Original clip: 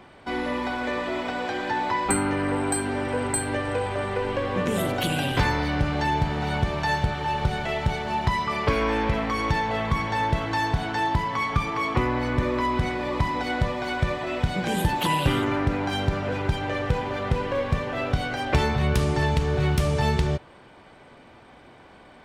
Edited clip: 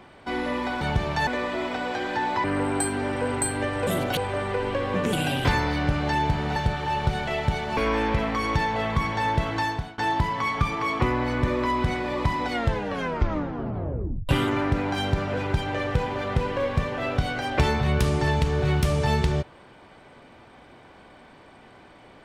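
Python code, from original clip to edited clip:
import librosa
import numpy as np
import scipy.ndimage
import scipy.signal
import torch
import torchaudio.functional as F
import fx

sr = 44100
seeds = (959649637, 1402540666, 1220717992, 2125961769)

y = fx.edit(x, sr, fx.cut(start_s=1.98, length_s=0.38),
    fx.move(start_s=4.75, length_s=0.3, to_s=3.79),
    fx.move(start_s=6.48, length_s=0.46, to_s=0.81),
    fx.cut(start_s=8.15, length_s=0.57),
    fx.fade_out_to(start_s=10.54, length_s=0.39, floor_db=-23.5),
    fx.tape_stop(start_s=13.46, length_s=1.78), tone=tone)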